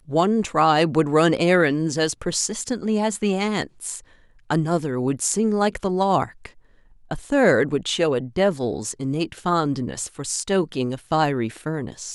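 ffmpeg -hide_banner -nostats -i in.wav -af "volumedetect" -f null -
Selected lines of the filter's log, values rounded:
mean_volume: -22.2 dB
max_volume: -4.6 dB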